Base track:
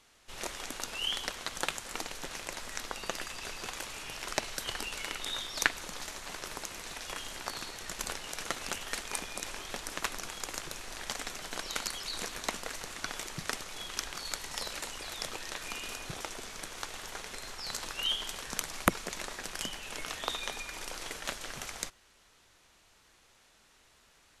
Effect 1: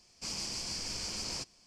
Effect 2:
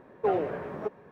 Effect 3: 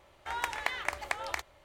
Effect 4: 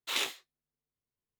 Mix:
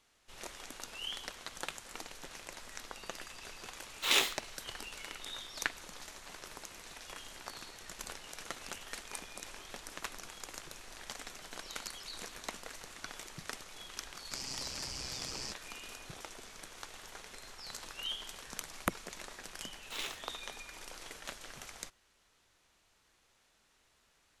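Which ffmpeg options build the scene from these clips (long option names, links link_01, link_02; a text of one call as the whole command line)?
ffmpeg -i bed.wav -i cue0.wav -i cue1.wav -i cue2.wav -i cue3.wav -filter_complex "[4:a]asplit=2[link_01][link_02];[0:a]volume=-7.5dB[link_03];[link_01]dynaudnorm=framelen=110:gausssize=5:maxgain=12.5dB[link_04];[1:a]aeval=exprs='val(0)*sin(2*PI*65*n/s)':channel_layout=same[link_05];[link_04]atrim=end=1.39,asetpts=PTS-STARTPTS,afade=type=in:duration=0.004:curve=hsin,afade=type=out:start_time=1.386:duration=0.004:curve=hsin,adelay=3950[link_06];[link_05]atrim=end=1.66,asetpts=PTS-STARTPTS,volume=-1.5dB,afade=type=in:duration=0.004:curve=hsin,afade=type=out:start_time=1.656:duration=0.004:curve=hsin,adelay=14090[link_07];[link_02]atrim=end=1.39,asetpts=PTS-STARTPTS,volume=-9dB,afade=type=in:duration=0.004:curve=hsin,afade=type=out:start_time=1.386:duration=0.004:curve=hsin,adelay=19830[link_08];[link_03][link_06][link_07][link_08]amix=inputs=4:normalize=0" out.wav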